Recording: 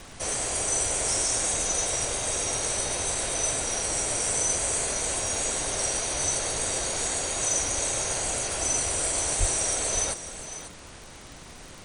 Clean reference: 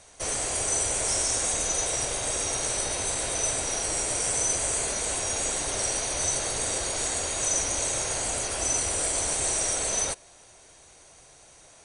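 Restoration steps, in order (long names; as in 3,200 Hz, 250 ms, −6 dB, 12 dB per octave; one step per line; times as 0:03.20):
click removal
0:09.39–0:09.51: high-pass filter 140 Hz 24 dB per octave
noise reduction from a noise print 9 dB
echo removal 543 ms −12 dB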